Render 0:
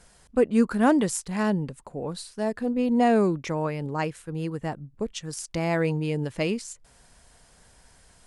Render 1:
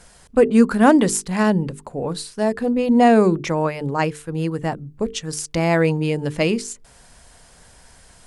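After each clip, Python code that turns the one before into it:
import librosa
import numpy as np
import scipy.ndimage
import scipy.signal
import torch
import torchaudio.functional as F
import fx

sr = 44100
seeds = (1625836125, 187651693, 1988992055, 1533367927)

y = fx.hum_notches(x, sr, base_hz=50, count=9)
y = y * librosa.db_to_amplitude(7.5)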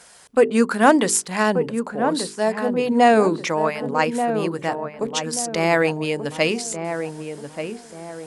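y = fx.highpass(x, sr, hz=560.0, slope=6)
y = fx.echo_filtered(y, sr, ms=1183, feedback_pct=41, hz=1200.0, wet_db=-7.0)
y = y * librosa.db_to_amplitude(3.0)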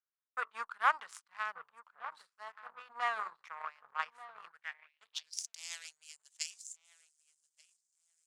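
y = fx.power_curve(x, sr, exponent=2.0)
y = fx.tone_stack(y, sr, knobs='10-0-10')
y = fx.filter_sweep_bandpass(y, sr, from_hz=1200.0, to_hz=7200.0, start_s=4.43, end_s=5.55, q=3.1)
y = y * librosa.db_to_amplitude(6.0)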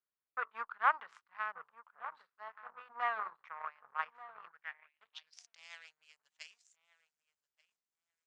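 y = scipy.signal.sosfilt(scipy.signal.butter(2, 2200.0, 'lowpass', fs=sr, output='sos'), x)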